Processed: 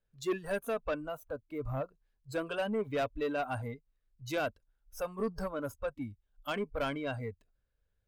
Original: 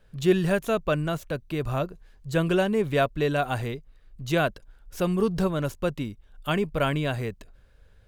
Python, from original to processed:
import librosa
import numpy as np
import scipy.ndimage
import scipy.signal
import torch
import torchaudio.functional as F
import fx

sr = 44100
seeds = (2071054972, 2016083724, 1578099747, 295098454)

y = fx.noise_reduce_blind(x, sr, reduce_db=18)
y = fx.dynamic_eq(y, sr, hz=1800.0, q=0.82, threshold_db=-44.0, ratio=4.0, max_db=-6, at=(0.97, 1.8), fade=0.02)
y = 10.0 ** (-20.5 / 20.0) * np.tanh(y / 10.0 ** (-20.5 / 20.0))
y = y * 10.0 ** (-5.5 / 20.0)